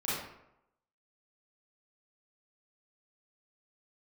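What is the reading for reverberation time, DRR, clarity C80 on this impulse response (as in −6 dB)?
0.80 s, −10.5 dB, 3.0 dB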